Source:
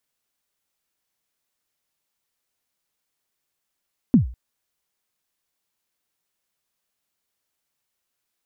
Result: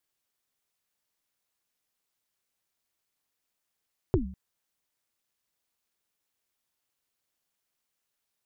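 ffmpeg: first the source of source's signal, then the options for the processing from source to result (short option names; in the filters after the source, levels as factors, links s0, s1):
-f lavfi -i "aevalsrc='0.447*pow(10,-3*t/0.39)*sin(2*PI*(280*0.121/log(60/280)*(exp(log(60/280)*min(t,0.121)/0.121)-1)+60*max(t-0.121,0)))':d=0.2:s=44100"
-af "acompressor=threshold=0.0708:ratio=2.5,aeval=exprs='val(0)*sin(2*PI*130*n/s)':c=same"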